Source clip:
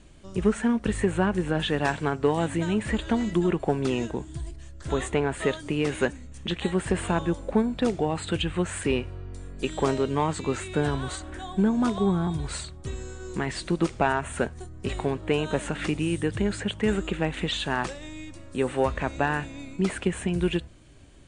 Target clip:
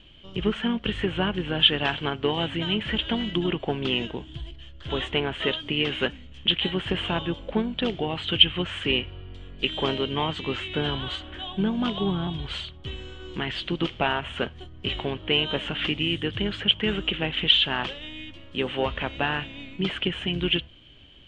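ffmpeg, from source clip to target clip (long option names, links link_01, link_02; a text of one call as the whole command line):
ffmpeg -i in.wav -filter_complex "[0:a]asplit=2[link_01][link_02];[link_02]asetrate=35002,aresample=44100,atempo=1.25992,volume=-11dB[link_03];[link_01][link_03]amix=inputs=2:normalize=0,lowpass=frequency=3100:width_type=q:width=11,volume=-3dB" out.wav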